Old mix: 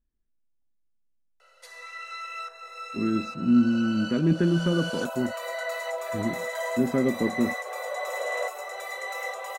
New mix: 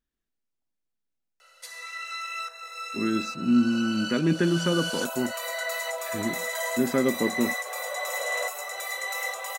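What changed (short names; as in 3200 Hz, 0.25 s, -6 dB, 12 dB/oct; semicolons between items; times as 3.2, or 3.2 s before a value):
speech +5.0 dB; master: add tilt +3 dB/oct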